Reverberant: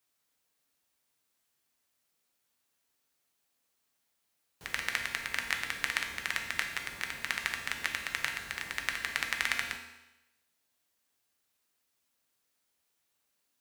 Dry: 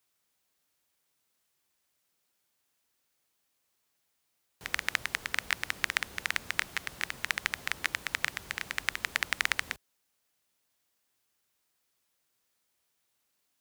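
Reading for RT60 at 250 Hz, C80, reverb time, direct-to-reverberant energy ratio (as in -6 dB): 0.95 s, 9.0 dB, 0.95 s, 2.5 dB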